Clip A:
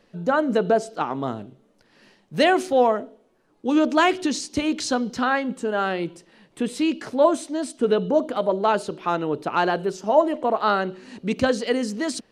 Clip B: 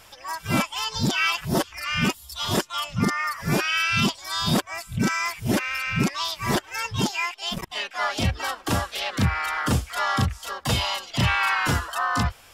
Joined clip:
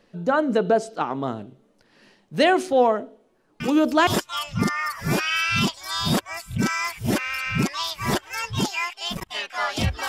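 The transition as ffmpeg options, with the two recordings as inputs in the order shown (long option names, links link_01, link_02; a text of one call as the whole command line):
ffmpeg -i cue0.wav -i cue1.wav -filter_complex "[1:a]asplit=2[link_01][link_02];[0:a]apad=whole_dur=10.08,atrim=end=10.08,atrim=end=4.072[link_03];[link_02]atrim=start=2.478:end=8.49[link_04];[link_01]atrim=start=2.01:end=2.48,asetpts=PTS-STARTPTS,volume=-9dB,afade=type=in:duration=0.004:curve=hsin,afade=type=out:start_time=0.466:duration=0.004:curve=hsin,adelay=3600[link_05];[link_03][link_04]acrossfade=duration=0.004:curve1=hsin:curve2=hsin[link_06];[link_06][link_05]amix=inputs=2:normalize=0" out.wav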